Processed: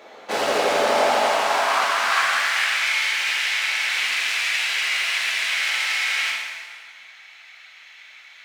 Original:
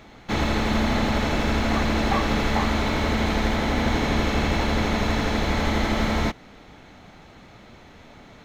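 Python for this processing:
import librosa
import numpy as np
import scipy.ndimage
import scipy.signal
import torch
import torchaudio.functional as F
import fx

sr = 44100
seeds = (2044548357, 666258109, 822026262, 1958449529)

y = fx.self_delay(x, sr, depth_ms=0.34)
y = fx.filter_sweep_highpass(y, sr, from_hz=510.0, to_hz=2200.0, start_s=0.71, end_s=2.79, q=2.3)
y = fx.rev_plate(y, sr, seeds[0], rt60_s=1.8, hf_ratio=0.8, predelay_ms=0, drr_db=-3.0)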